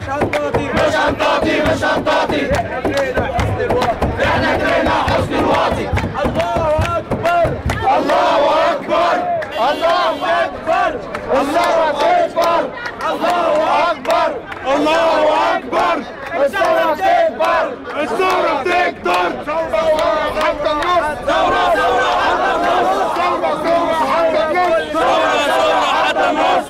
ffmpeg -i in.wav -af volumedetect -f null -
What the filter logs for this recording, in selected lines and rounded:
mean_volume: -15.3 dB
max_volume: -7.4 dB